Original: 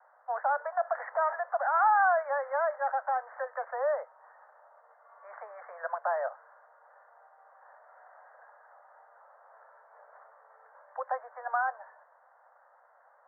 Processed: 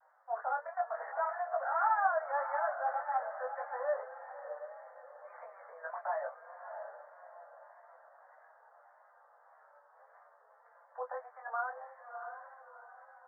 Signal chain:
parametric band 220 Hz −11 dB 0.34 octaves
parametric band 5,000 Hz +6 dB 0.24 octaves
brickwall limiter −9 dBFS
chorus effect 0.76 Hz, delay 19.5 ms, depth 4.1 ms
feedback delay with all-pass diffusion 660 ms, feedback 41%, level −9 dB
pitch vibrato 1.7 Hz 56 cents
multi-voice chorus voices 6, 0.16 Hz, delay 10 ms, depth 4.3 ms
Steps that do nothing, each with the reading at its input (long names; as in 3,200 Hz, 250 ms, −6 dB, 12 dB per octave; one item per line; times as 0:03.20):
parametric band 220 Hz: nothing at its input below 430 Hz
parametric band 5,000 Hz: nothing at its input above 2,000 Hz
brickwall limiter −9 dBFS: peak of its input −15.0 dBFS